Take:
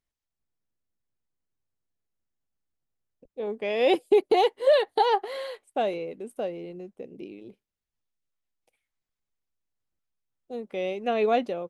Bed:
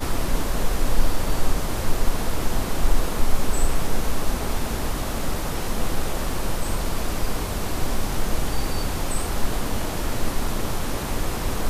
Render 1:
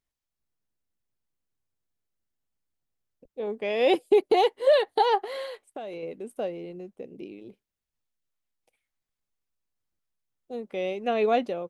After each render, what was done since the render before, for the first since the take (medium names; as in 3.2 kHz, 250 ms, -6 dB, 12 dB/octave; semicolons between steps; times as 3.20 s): 5.45–6.03 s: compression 10:1, threshold -33 dBFS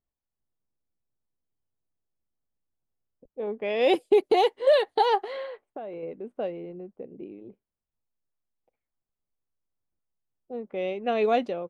level-controlled noise filter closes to 1 kHz, open at -19 dBFS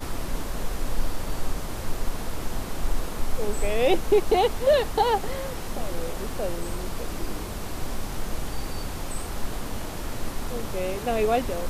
add bed -6.5 dB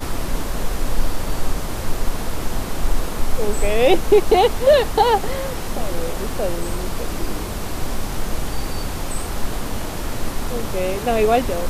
trim +6.5 dB